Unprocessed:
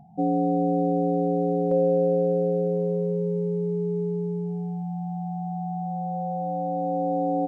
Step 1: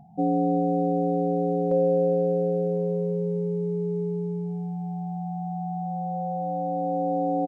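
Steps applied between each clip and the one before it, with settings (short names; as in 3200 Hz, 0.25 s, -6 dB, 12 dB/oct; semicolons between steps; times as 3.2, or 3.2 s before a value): echo 0.415 s -18 dB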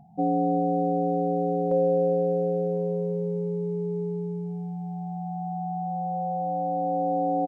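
dynamic EQ 820 Hz, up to +4 dB, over -39 dBFS, Q 1.5; gain -2 dB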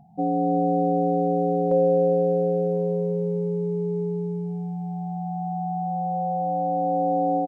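AGC gain up to 3 dB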